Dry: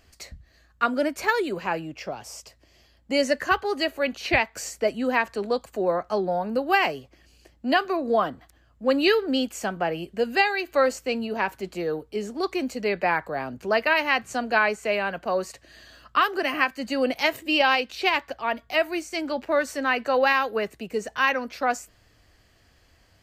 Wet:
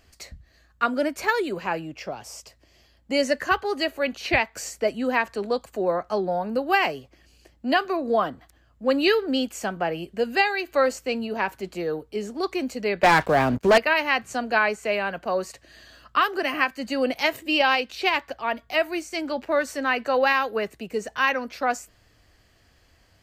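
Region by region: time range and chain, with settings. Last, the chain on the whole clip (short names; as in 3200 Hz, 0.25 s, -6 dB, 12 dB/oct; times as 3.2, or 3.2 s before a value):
13.03–13.78 expander -42 dBFS + low shelf 160 Hz +5 dB + sample leveller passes 3
whole clip: dry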